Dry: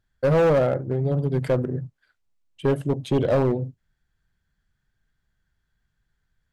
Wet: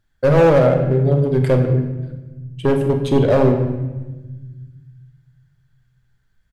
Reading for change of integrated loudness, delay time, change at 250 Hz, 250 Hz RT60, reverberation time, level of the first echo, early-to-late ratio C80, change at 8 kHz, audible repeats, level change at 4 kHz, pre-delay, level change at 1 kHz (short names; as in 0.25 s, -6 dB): +6.5 dB, 48 ms, +7.5 dB, 2.4 s, 1.2 s, -12.5 dB, 9.0 dB, n/a, 1, +5.5 dB, 3 ms, +6.5 dB